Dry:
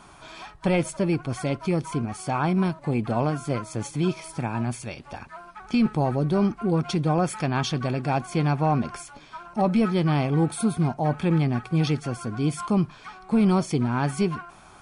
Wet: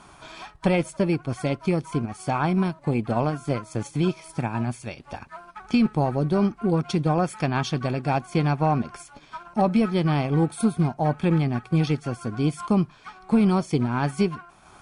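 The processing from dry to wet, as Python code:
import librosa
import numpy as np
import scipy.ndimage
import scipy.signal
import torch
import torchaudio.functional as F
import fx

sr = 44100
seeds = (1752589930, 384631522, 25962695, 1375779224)

y = fx.cheby_harmonics(x, sr, harmonics=(2,), levels_db=(-29,), full_scale_db=-13.0)
y = fx.transient(y, sr, attack_db=3, sustain_db=-5)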